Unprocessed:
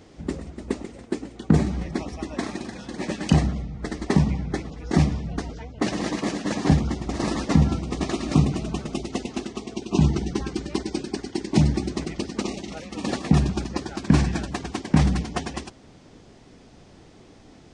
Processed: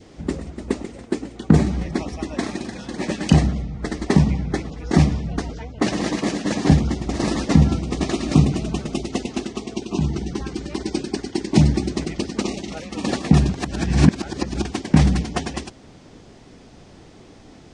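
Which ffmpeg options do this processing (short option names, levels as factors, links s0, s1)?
-filter_complex "[0:a]asettb=1/sr,asplit=3[s0][s1][s2];[s0]atrim=end=9.864[s3];[s1]atrim=start=9.86:end=10.81,asetpts=PTS-STARTPTS,afade=t=in:d=0.004:c=qsin,afade=t=out:st=0.946:d=0.004:c=qsin,acompressor=threshold=0.0251:ratio=1.5:attack=3.2:release=140:knee=1:detection=peak[s4];[s2]atrim=start=10.806[s5];[s3][s4]acrossfade=d=0.004:c1=hsin:c2=qsin[s6];[s6][s5]acrossfade=d=0.004:c1=qsin:c2=hsin,asplit=3[s7][s8][s9];[s7]atrim=end=13.542[s10];[s8]atrim=start=13.538:end=14.652,asetpts=PTS-STARTPTS,areverse[s11];[s9]atrim=start=14.648[s12];[s10][s11]acrossfade=d=0.004:c1=hsin:c2=hsin[s13];[s13][s12]acrossfade=d=0.004:c1=hsin:c2=hsin,adynamicequalizer=threshold=0.00631:dfrequency=1100:dqfactor=1.4:tfrequency=1100:tqfactor=1.4:attack=5:release=100:ratio=0.375:range=2:mode=cutabove:tftype=bell,volume=1.58"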